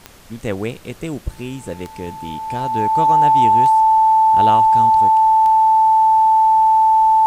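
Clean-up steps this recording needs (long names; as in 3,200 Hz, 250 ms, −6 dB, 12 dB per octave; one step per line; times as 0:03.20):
click removal
notch filter 880 Hz, Q 30
downward expander −29 dBFS, range −21 dB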